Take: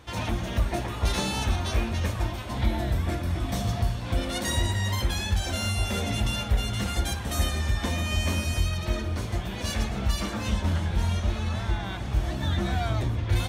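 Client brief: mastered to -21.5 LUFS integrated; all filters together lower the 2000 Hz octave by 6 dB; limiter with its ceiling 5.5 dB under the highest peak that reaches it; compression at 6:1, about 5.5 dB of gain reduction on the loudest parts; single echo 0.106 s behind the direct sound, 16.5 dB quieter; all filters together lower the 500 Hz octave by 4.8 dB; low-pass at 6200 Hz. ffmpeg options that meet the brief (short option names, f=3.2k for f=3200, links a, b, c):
-af "lowpass=6.2k,equalizer=f=500:t=o:g=-6.5,equalizer=f=2k:t=o:g=-7.5,acompressor=threshold=-25dB:ratio=6,alimiter=limit=-23.5dB:level=0:latency=1,aecho=1:1:106:0.15,volume=11.5dB"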